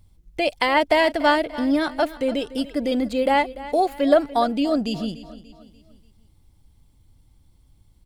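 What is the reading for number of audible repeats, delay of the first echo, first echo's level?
3, 0.292 s, -16.5 dB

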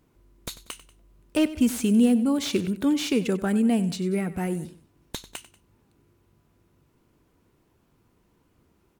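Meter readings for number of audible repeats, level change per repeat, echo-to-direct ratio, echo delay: 2, -7.0 dB, -15.0 dB, 94 ms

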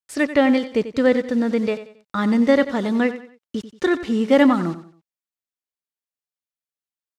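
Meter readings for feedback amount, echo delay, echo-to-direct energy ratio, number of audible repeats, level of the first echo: 34%, 91 ms, -12.5 dB, 3, -13.0 dB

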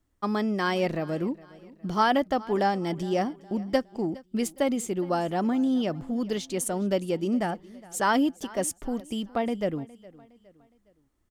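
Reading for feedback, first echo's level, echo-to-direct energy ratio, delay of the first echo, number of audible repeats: 42%, -21.0 dB, -20.0 dB, 0.413 s, 2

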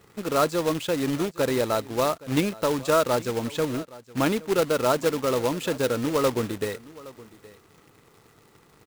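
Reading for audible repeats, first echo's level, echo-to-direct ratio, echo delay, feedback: 1, -20.0 dB, -20.0 dB, 0.818 s, no steady repeat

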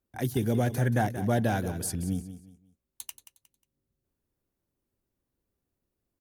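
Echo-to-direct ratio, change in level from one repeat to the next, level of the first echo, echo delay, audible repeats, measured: -12.0 dB, -10.5 dB, -12.5 dB, 0.18 s, 3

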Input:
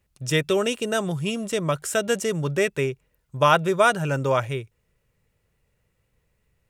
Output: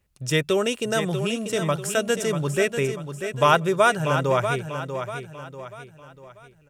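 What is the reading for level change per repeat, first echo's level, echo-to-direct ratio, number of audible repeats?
-8.0 dB, -8.5 dB, -7.5 dB, 4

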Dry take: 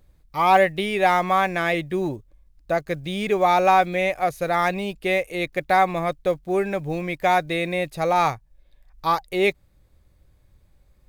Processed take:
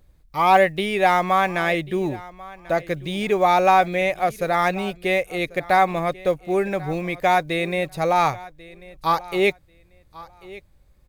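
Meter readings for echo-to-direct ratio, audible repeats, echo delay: -20.0 dB, 2, 1.091 s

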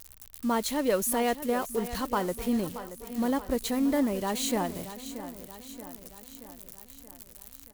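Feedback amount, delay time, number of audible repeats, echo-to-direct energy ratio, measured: 57%, 0.628 s, 5, -11.5 dB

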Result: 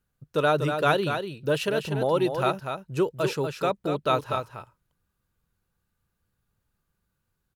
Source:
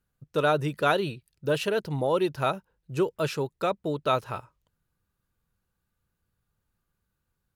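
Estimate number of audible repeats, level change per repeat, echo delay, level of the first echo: 1, no steady repeat, 0.242 s, -7.0 dB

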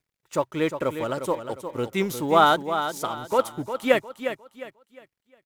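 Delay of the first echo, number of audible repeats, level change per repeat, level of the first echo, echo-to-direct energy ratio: 0.356 s, 3, -10.0 dB, -9.0 dB, -8.5 dB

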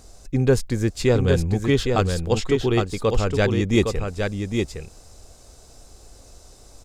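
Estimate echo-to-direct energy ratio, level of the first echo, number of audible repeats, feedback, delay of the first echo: -5.0 dB, -5.0 dB, 1, no steady repeat, 0.812 s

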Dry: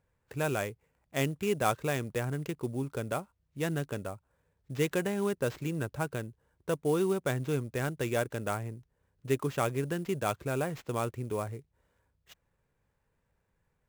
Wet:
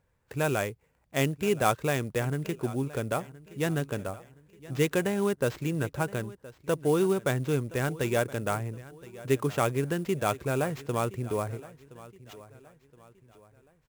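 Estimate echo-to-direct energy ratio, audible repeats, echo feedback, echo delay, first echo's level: -18.5 dB, 3, 40%, 1.02 s, -19.0 dB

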